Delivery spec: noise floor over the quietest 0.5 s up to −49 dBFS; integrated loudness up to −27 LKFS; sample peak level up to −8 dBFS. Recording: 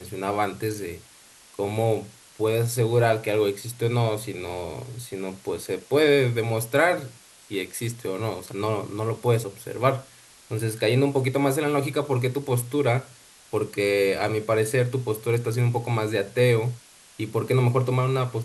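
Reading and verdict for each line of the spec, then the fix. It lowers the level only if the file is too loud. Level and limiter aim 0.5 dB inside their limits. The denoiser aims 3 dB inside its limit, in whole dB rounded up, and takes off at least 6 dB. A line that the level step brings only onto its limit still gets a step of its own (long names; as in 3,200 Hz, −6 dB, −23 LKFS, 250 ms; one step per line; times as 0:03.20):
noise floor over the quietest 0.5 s −52 dBFS: in spec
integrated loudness −25.0 LKFS: out of spec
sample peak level −6.0 dBFS: out of spec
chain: level −2.5 dB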